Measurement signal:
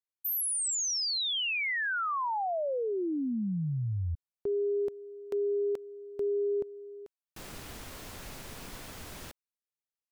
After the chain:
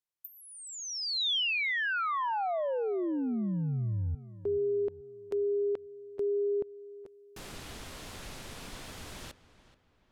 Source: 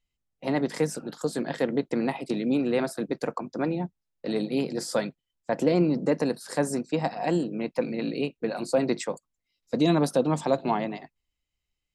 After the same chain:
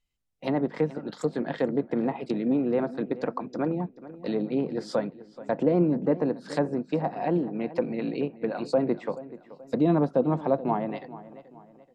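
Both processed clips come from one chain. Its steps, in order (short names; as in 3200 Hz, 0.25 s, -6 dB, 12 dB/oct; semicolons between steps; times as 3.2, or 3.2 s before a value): treble ducked by the level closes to 1200 Hz, closed at -23.5 dBFS; dynamic EQ 3500 Hz, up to +4 dB, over -54 dBFS, Q 1.9; darkening echo 0.43 s, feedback 41%, low-pass 3900 Hz, level -16.5 dB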